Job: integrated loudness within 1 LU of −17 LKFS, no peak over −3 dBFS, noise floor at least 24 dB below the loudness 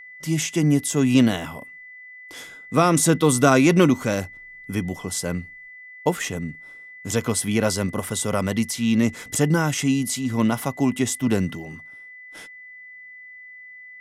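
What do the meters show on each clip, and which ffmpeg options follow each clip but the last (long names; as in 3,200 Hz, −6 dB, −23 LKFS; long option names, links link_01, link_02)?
interfering tone 2,000 Hz; level of the tone −40 dBFS; integrated loudness −21.5 LKFS; sample peak −2.5 dBFS; target loudness −17.0 LKFS
→ -af "bandreject=frequency=2000:width=30"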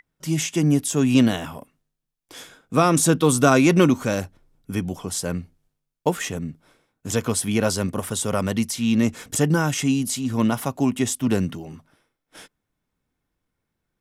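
interfering tone none found; integrated loudness −21.5 LKFS; sample peak −2.5 dBFS; target loudness −17.0 LKFS
→ -af "volume=4.5dB,alimiter=limit=-3dB:level=0:latency=1"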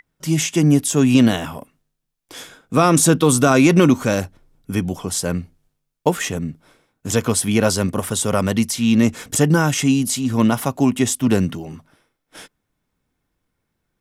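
integrated loudness −17.5 LKFS; sample peak −3.0 dBFS; background noise floor −76 dBFS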